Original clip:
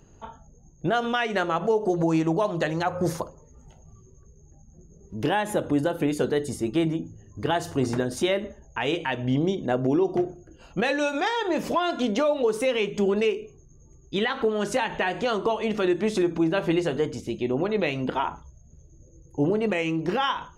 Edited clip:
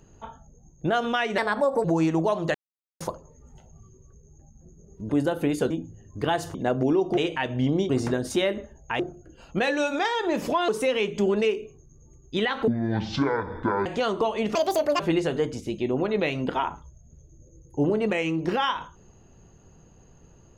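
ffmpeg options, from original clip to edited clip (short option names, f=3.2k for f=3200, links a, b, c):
-filter_complex "[0:a]asplit=16[a][b][c][d][e][f][g][h][i][j][k][l][m][n][o][p];[a]atrim=end=1.384[q];[b]atrim=start=1.38:end=1.97,asetpts=PTS-STARTPTS,asetrate=56007,aresample=44100,atrim=end_sample=20487,asetpts=PTS-STARTPTS[r];[c]atrim=start=1.966:end=2.67,asetpts=PTS-STARTPTS,afade=t=out:st=0.7:d=0.004:c=hsin[s];[d]atrim=start=2.67:end=3.13,asetpts=PTS-STARTPTS,volume=0[t];[e]atrim=start=3.13:end=5.222,asetpts=PTS-STARTPTS,afade=t=in:d=0.004:c=hsin[u];[f]atrim=start=5.678:end=6.292[v];[g]atrim=start=6.918:end=7.762[w];[h]atrim=start=9.578:end=10.212[x];[i]atrim=start=8.858:end=9.582[y];[j]atrim=start=7.758:end=8.862[z];[k]atrim=start=10.208:end=11.902[aa];[l]atrim=start=12.478:end=14.474[ab];[m]atrim=start=14.47:end=15.11,asetpts=PTS-STARTPTS,asetrate=23814,aresample=44100[ac];[n]atrim=start=15.106:end=15.804[ad];[o]atrim=start=15.8:end=16.6,asetpts=PTS-STARTPTS,asetrate=78939,aresample=44100,atrim=end_sample=19709,asetpts=PTS-STARTPTS[ae];[p]atrim=start=16.596[af];[q][r]acrossfade=d=0.004:c1=hsin:c2=hsin[ag];[s][t][u]concat=n=3:v=0:a=1[ah];[ag][ah]acrossfade=d=0.004:c1=hsin:c2=hsin[ai];[ai][v]acrossfade=d=0.004:c1=hsin:c2=hsin[aj];[aj][w]acrossfade=d=0.004:c1=hsin:c2=hsin[ak];[ak][x]acrossfade=d=0.004:c1=hsin:c2=hsin[al];[al][y]acrossfade=d=0.004:c1=hsin:c2=hsin[am];[am][z]acrossfade=d=0.004:c1=hsin:c2=hsin[an];[an][aa]acrossfade=d=0.004:c1=hsin:c2=hsin[ao];[ao][ab]acrossfade=d=0.004:c1=hsin:c2=hsin[ap];[ap][ac]acrossfade=d=0.004:c1=hsin:c2=hsin[aq];[aq][ad]acrossfade=d=0.004:c1=hsin:c2=hsin[ar];[ar][ae]acrossfade=d=0.004:c1=hsin:c2=hsin[as];[as][af]acrossfade=d=0.004:c1=hsin:c2=hsin"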